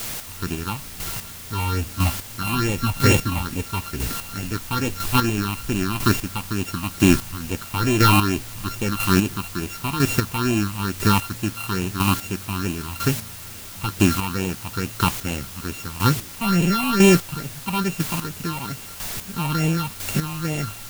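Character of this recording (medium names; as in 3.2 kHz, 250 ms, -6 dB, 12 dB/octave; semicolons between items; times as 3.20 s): a buzz of ramps at a fixed pitch in blocks of 32 samples; phasing stages 6, 2.3 Hz, lowest notch 410–1300 Hz; a quantiser's noise floor 6-bit, dither triangular; chopped level 1 Hz, depth 60%, duty 20%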